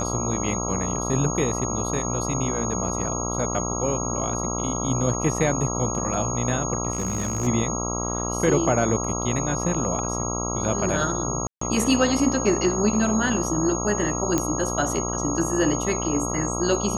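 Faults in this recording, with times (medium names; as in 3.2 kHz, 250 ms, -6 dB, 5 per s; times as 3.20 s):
buzz 60 Hz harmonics 22 -29 dBFS
whine 6.6 kHz -29 dBFS
6.92–7.48 s: clipped -21 dBFS
11.47–11.61 s: dropout 144 ms
14.38 s: pop -8 dBFS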